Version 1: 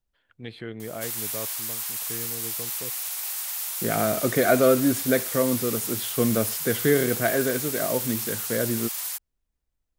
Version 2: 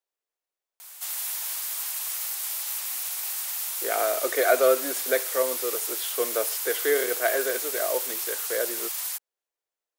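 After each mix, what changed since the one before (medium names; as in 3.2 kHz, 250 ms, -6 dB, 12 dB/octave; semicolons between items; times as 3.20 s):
first voice: muted; second voice: add inverse Chebyshev high-pass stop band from 200 Hz, stop band 40 dB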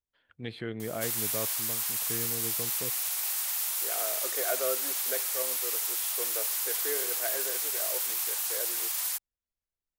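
first voice: unmuted; second voice -12.0 dB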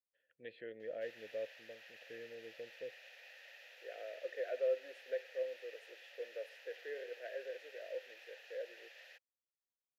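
background: add boxcar filter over 5 samples; master: add vowel filter e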